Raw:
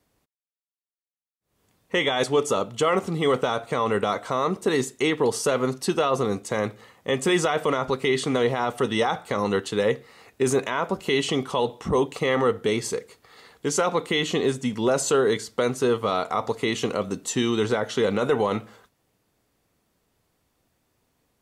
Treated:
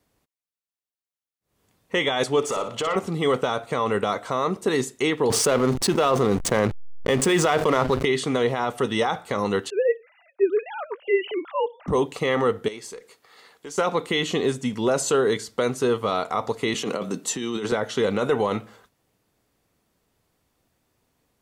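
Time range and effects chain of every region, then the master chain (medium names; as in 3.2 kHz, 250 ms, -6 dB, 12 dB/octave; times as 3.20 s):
2.43–2.96 s: compression 5:1, threshold -26 dBFS + overdrive pedal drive 14 dB, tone 3.3 kHz, clips at -14 dBFS + flutter echo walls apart 10.1 m, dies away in 0.39 s
5.30–8.05 s: hysteresis with a dead band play -31 dBFS + level flattener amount 70%
9.70–11.88 s: formants replaced by sine waves + band-stop 1.1 kHz, Q 14
12.68–13.78 s: high-pass 390 Hz 6 dB/octave + compression 2:1, threshold -39 dBFS + valve stage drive 18 dB, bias 0.35
16.74–17.72 s: high-pass 140 Hz 24 dB/octave + compressor with a negative ratio -27 dBFS
whole clip: none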